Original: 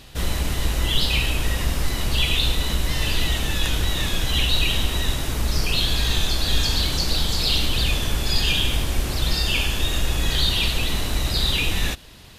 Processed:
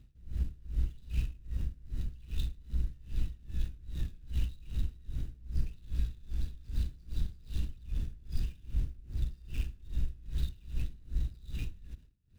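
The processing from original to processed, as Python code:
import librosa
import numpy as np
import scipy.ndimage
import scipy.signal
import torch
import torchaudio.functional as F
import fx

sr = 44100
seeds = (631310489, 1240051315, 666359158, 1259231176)

y = scipy.ndimage.median_filter(x, 41, mode='constant')
y = fx.tone_stack(y, sr, knobs='6-0-2')
y = y * 10.0 ** (-24 * (0.5 - 0.5 * np.cos(2.0 * np.pi * 2.5 * np.arange(len(y)) / sr)) / 20.0)
y = F.gain(torch.from_numpy(y), 6.5).numpy()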